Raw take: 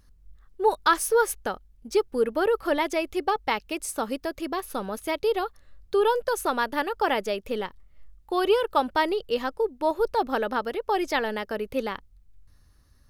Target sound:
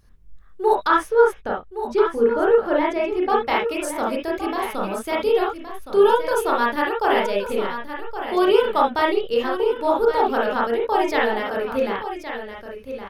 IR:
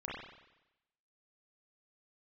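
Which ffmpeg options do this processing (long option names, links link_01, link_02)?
-filter_complex "[0:a]asettb=1/sr,asplit=3[link_01][link_02][link_03];[link_01]atrim=end=0.874[link_04];[link_02]atrim=start=0.87:end=3.3,asetpts=PTS-STARTPTS,afade=type=in:duration=0.004:curve=qsin,afade=type=out:start_time=2.426:duration=0.004:curve=qsin,lowpass=frequency=1800:poles=1[link_05];[link_03]atrim=start=3.296[link_06];[link_04][link_05]acrossfade=duration=0.004:curve1=hsin:curve2=qsin[link_07];[link_07][link_06]acrossfade=duration=0.004:curve1=qsin:curve2=hsin,aecho=1:1:1118:0.316[link_08];[1:a]atrim=start_sample=2205,atrim=end_sample=3528[link_09];[link_08][link_09]afir=irnorm=-1:irlink=0,volume=5dB"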